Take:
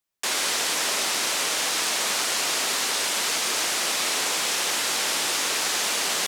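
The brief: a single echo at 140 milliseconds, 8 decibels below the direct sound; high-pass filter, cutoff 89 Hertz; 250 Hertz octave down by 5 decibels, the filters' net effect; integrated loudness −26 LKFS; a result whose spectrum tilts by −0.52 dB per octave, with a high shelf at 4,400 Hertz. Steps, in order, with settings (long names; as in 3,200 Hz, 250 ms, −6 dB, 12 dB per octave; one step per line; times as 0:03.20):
high-pass filter 89 Hz
parametric band 250 Hz −7 dB
high-shelf EQ 4,400 Hz −7 dB
single-tap delay 140 ms −8 dB
level −0.5 dB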